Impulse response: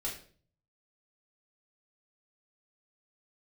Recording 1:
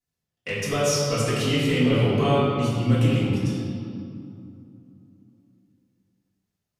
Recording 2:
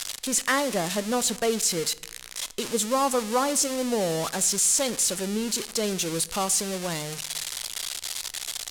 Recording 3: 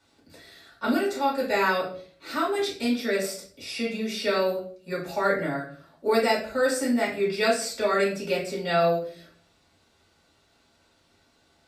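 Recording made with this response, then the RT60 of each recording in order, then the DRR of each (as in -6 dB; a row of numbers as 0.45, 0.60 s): 3; 2.5, 1.0, 0.45 s; -13.5, 17.0, -5.5 dB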